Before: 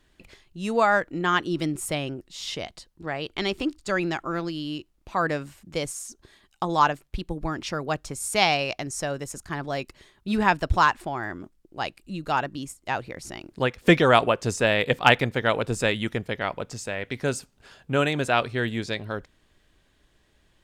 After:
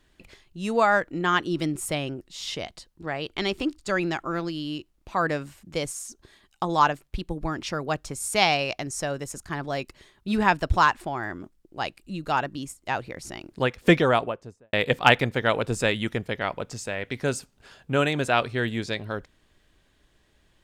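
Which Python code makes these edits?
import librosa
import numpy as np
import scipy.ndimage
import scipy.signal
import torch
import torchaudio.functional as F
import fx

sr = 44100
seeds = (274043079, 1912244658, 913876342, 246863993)

y = fx.studio_fade_out(x, sr, start_s=13.79, length_s=0.94)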